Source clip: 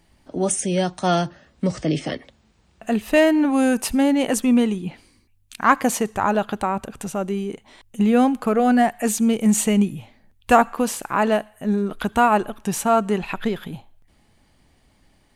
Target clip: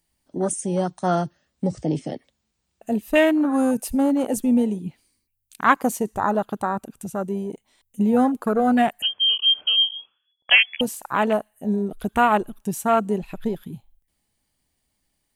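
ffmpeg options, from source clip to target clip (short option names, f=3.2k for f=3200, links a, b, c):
-filter_complex "[0:a]afwtdn=0.0631,aemphasis=mode=production:type=75fm,asettb=1/sr,asplit=3[a][b][c];[a]atrim=end=9.024[d];[b]atrim=start=9.02:end=10.81,asetpts=PTS-STARTPTS,afade=t=in:d=0.004:c=qsin,afade=t=out:st=1.786:d=0.004:c=qsin,lowpass=f=2.9k:t=q:w=0.5098,lowpass=f=2.9k:t=q:w=0.6013,lowpass=f=2.9k:t=q:w=0.9,lowpass=f=2.9k:t=q:w=2.563,afreqshift=-3400[e];[c]atrim=start=10.806[f];[d][e]acrossfade=d=0.004:c1=hsin:c2=qsin[g];[g][f]acrossfade=d=0.004:c1=qsin:c2=hsin,volume=-1dB"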